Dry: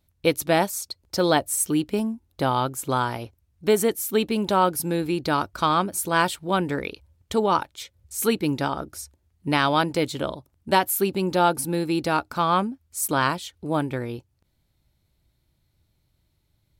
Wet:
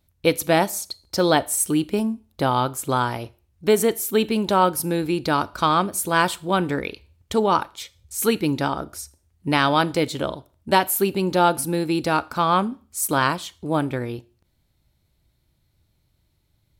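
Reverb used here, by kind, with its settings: Schroeder reverb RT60 0.39 s, combs from 25 ms, DRR 19 dB; gain +2 dB

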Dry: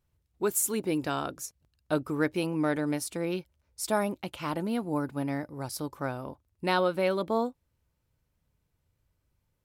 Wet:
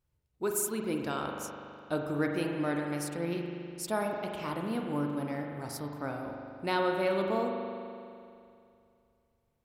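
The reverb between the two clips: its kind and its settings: spring tank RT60 2.5 s, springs 41 ms, chirp 40 ms, DRR 1.5 dB; gain -4.5 dB

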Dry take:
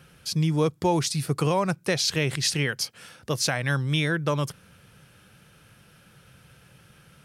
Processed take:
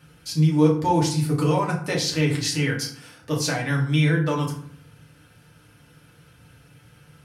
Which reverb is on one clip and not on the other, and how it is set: FDN reverb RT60 0.56 s, low-frequency decay 1.4×, high-frequency decay 0.6×, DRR -3.5 dB; gain -4.5 dB

